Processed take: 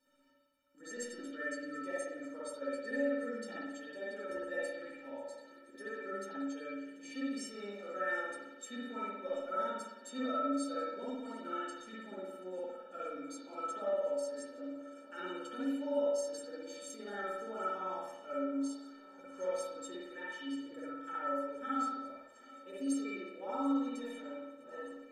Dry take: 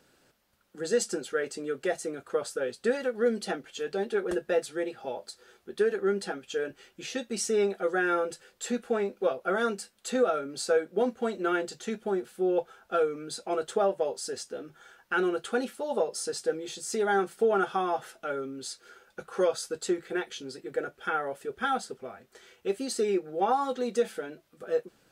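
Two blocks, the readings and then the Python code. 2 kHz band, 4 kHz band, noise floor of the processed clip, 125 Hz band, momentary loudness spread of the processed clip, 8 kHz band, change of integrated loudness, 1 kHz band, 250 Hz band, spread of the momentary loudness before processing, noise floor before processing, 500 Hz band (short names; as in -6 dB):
-8.5 dB, -11.5 dB, -56 dBFS, under -15 dB, 12 LU, -11.5 dB, -9.0 dB, -8.5 dB, -5.0 dB, 12 LU, -66 dBFS, -11.5 dB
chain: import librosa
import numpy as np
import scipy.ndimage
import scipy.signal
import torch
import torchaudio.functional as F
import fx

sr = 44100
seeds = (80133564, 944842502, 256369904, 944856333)

y = fx.stiff_resonator(x, sr, f0_hz=270.0, decay_s=0.39, stiffness=0.03)
y = fx.echo_swing(y, sr, ms=1225, ratio=1.5, feedback_pct=63, wet_db=-21.5)
y = fx.rev_spring(y, sr, rt60_s=1.0, pass_ms=(54,), chirp_ms=40, drr_db=-7.0)
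y = y * librosa.db_to_amplitude(1.5)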